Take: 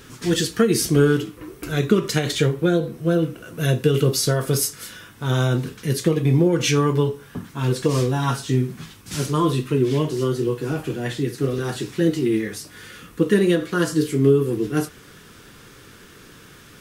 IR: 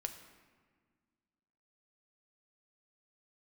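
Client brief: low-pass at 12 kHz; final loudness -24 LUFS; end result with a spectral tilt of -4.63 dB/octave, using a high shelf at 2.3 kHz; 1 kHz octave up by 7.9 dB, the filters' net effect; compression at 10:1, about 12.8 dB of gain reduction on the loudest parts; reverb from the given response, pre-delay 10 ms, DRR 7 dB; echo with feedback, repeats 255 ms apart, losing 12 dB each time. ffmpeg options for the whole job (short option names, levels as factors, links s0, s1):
-filter_complex "[0:a]lowpass=12000,equalizer=f=1000:t=o:g=9,highshelf=f=2300:g=3,acompressor=threshold=0.0708:ratio=10,aecho=1:1:255|510|765:0.251|0.0628|0.0157,asplit=2[s0][s1];[1:a]atrim=start_sample=2205,adelay=10[s2];[s1][s2]afir=irnorm=-1:irlink=0,volume=0.531[s3];[s0][s3]amix=inputs=2:normalize=0,volume=1.5"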